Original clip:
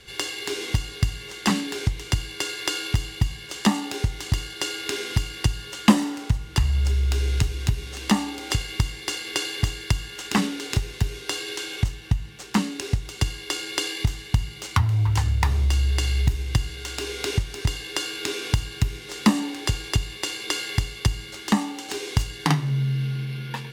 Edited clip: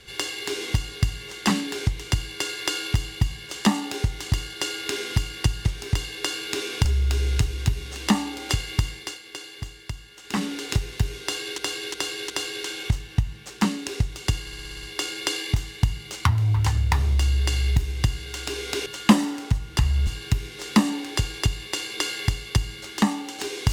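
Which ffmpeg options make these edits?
-filter_complex "[0:a]asplit=17[s0][s1][s2][s3][s4][s5][s6][s7][s8][s9][s10][s11][s12][s13][s14][s15][s16];[s0]atrim=end=5.652[s17];[s1]atrim=start=17.368:end=18.572[s18];[s2]atrim=start=6.858:end=9.21,asetpts=PTS-STARTPTS,afade=t=out:st=2.042:d=0.31:silence=0.281838[s19];[s3]atrim=start=9.21:end=10.24,asetpts=PTS-STARTPTS,volume=0.282[s20];[s4]atrim=start=10.24:end=11.592,asetpts=PTS-STARTPTS,afade=t=in:d=0.31:silence=0.281838[s21];[s5]atrim=start=11.228:end=11.592[s22];[s6]atrim=start=11.228:end=11.592[s23];[s7]atrim=start=11.228:end=13.402[s24];[s8]atrim=start=13.338:end=13.402[s25];[s9]atrim=start=13.338:end=13.402[s26];[s10]atrim=start=13.338:end=13.402[s27];[s11]atrim=start=13.338:end=13.402[s28];[s12]atrim=start=13.338:end=13.402[s29];[s13]atrim=start=13.338:end=13.402[s30];[s14]atrim=start=13.338:end=17.372[s31];[s15]atrim=start=5.648:end=6.862[s32];[s16]atrim=start=18.568[s33];[s17][s18]acrossfade=d=0.004:c1=hsin:c2=hsin[s34];[s19][s20][s21]concat=n=3:v=0:a=1[s35];[s34][s35]acrossfade=d=0.004:c1=hsin:c2=hsin[s36];[s36][s22]acrossfade=d=0.004:c1=hsin:c2=hsin[s37];[s37][s23]acrossfade=d=0.004:c1=hsin:c2=hsin[s38];[s38][s24]acrossfade=d=0.004:c1=hsin:c2=hsin[s39];[s39][s25]acrossfade=d=0.004:c1=hsin:c2=hsin[s40];[s40][s26]acrossfade=d=0.004:c1=hsin:c2=hsin[s41];[s41][s27]acrossfade=d=0.004:c1=hsin:c2=hsin[s42];[s42][s28]acrossfade=d=0.004:c1=hsin:c2=hsin[s43];[s43][s29]acrossfade=d=0.004:c1=hsin:c2=hsin[s44];[s44][s30]acrossfade=d=0.004:c1=hsin:c2=hsin[s45];[s45][s31]acrossfade=d=0.004:c1=hsin:c2=hsin[s46];[s46][s32]acrossfade=d=0.004:c1=hsin:c2=hsin[s47];[s47][s33]acrossfade=d=0.004:c1=hsin:c2=hsin"

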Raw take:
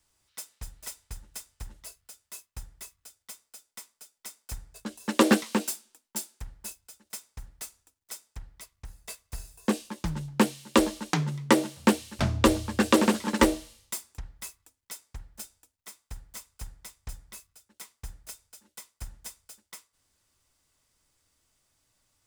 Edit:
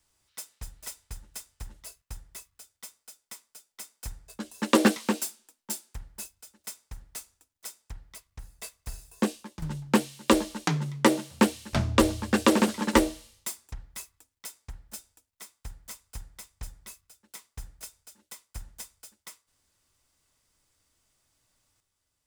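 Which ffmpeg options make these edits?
-filter_complex "[0:a]asplit=3[s0][s1][s2];[s0]atrim=end=2.022[s3];[s1]atrim=start=2.478:end=10.08,asetpts=PTS-STARTPTS,afade=t=out:st=7.212:d=0.39:silence=0.237137[s4];[s2]atrim=start=10.08,asetpts=PTS-STARTPTS,afade=t=in:d=0.004:c=hsin:silence=0.237137[s5];[s4][s5]concat=n=2:v=0:a=1[s6];[s3][s6]acrossfade=d=0.004:c1=hsin:c2=hsin"

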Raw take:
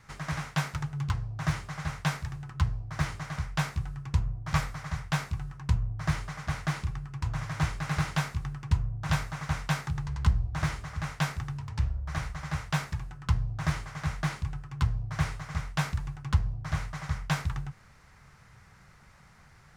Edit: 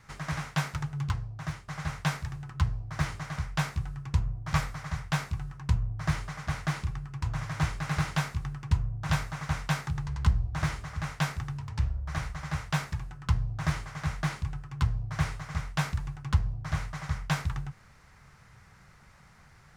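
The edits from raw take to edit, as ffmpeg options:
-filter_complex "[0:a]asplit=2[s0][s1];[s0]atrim=end=1.68,asetpts=PTS-STARTPTS,afade=t=out:st=1.06:d=0.62:silence=0.237137[s2];[s1]atrim=start=1.68,asetpts=PTS-STARTPTS,afade=t=in:d=0.004:c=hsin:silence=0.237137[s3];[s2][s3]concat=n=2:v=0:a=1"

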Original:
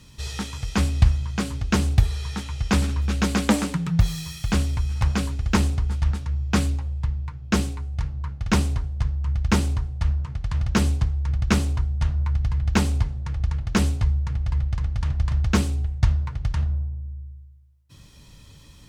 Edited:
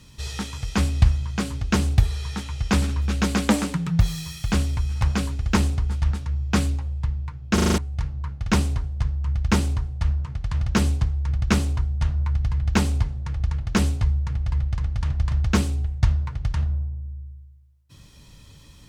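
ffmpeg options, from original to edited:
-filter_complex "[0:a]asplit=7[s0][s1][s2][s3][s4][s5][s6];[s0]atrim=end=7.582[s7];[s1]atrim=start=7.538:end=7.582[s8];[s2]atrim=start=7.538:end=7.582[s9];[s3]atrim=start=7.538:end=7.582[s10];[s4]atrim=start=7.538:end=7.582[s11];[s5]atrim=start=7.538:end=7.582[s12];[s6]atrim=start=7.778[s13];[s7][s8]acrossfade=d=0.004:c1=hsin:c2=hsin[s14];[s14][s9]acrossfade=d=0.004:c1=hsin:c2=hsin[s15];[s15][s10]acrossfade=d=0.004:c1=hsin:c2=hsin[s16];[s16][s11]acrossfade=d=0.004:c1=hsin:c2=hsin[s17];[s17][s12]acrossfade=d=0.004:c1=hsin:c2=hsin[s18];[s18][s13]acrossfade=d=0.004:c1=hsin:c2=hsin"

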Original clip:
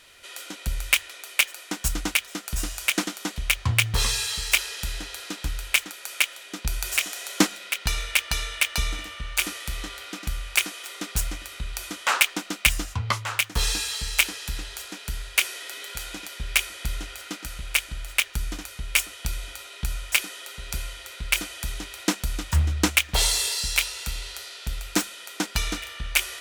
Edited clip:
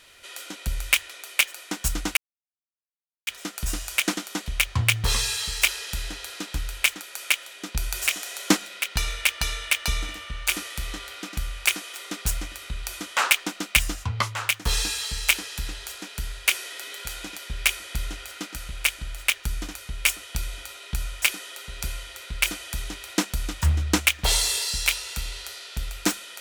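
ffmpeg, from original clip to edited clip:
-filter_complex "[0:a]asplit=2[s0][s1];[s0]atrim=end=2.17,asetpts=PTS-STARTPTS,afade=t=out:st=2.166:d=0.004:c=hsin,apad=pad_dur=1.1[s2];[s1]atrim=start=2.17,asetpts=PTS-STARTPTS,afade=t=in:d=0.004:c=hsin[s3];[s2][s3]concat=n=2:v=0:a=1"

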